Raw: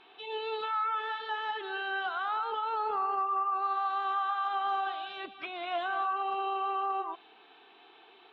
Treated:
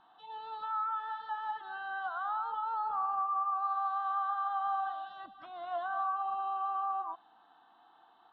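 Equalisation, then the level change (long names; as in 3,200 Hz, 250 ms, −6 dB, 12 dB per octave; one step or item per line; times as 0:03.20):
high-shelf EQ 3,100 Hz −12 dB
phaser with its sweep stopped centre 990 Hz, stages 4
0.0 dB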